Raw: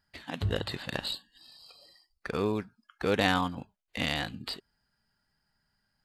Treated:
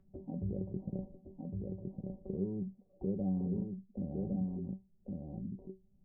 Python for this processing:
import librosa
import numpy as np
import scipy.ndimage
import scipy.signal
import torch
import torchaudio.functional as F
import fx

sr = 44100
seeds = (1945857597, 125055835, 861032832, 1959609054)

p1 = fx.over_compress(x, sr, threshold_db=-39.0, ratio=-1.0)
p2 = x + (p1 * librosa.db_to_amplitude(-1.0))
p3 = scipy.ndimage.gaussian_filter1d(p2, 20.0, mode='constant')
p4 = fx.comb_fb(p3, sr, f0_hz=190.0, decay_s=0.19, harmonics='all', damping=0.0, mix_pct=90)
p5 = p4 + 10.0 ** (-4.5 / 20.0) * np.pad(p4, (int(1109 * sr / 1000.0), 0))[:len(p4)]
p6 = fx.band_squash(p5, sr, depth_pct=40)
y = p6 * librosa.db_to_amplitude(6.0)